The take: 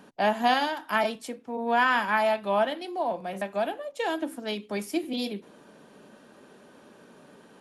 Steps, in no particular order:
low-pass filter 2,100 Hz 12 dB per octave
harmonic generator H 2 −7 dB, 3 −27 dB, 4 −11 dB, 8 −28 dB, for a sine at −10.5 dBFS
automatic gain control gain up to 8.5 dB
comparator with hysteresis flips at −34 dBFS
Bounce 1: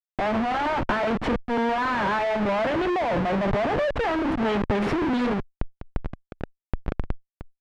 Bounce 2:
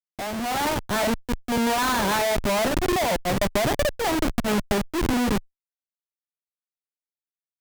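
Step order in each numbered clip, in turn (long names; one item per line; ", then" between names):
automatic gain control, then comparator with hysteresis, then harmonic generator, then low-pass filter
low-pass filter, then comparator with hysteresis, then harmonic generator, then automatic gain control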